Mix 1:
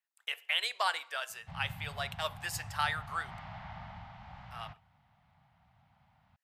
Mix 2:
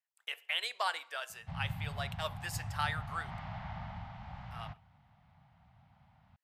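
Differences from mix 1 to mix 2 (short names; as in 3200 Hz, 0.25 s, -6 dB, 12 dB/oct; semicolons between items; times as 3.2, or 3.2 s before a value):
speech -3.5 dB; master: add low shelf 480 Hz +5 dB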